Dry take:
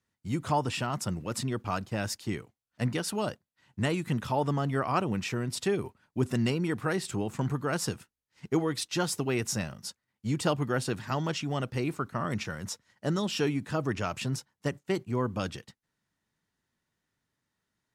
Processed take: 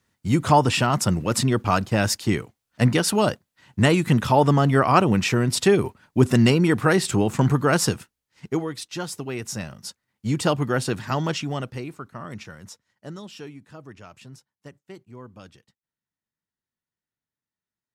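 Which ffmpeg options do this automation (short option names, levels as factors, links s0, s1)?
-af "volume=8.41,afade=t=out:st=7.7:d=1.03:silence=0.237137,afade=t=in:st=9.4:d=0.87:silence=0.421697,afade=t=out:st=11.32:d=0.57:silence=0.298538,afade=t=out:st=12.5:d=1.1:silence=0.398107"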